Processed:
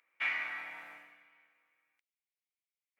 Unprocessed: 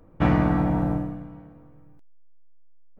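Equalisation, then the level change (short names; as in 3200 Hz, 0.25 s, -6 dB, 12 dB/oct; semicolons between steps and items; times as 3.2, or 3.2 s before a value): resonant high-pass 2200 Hz, resonance Q 5.5; -6.5 dB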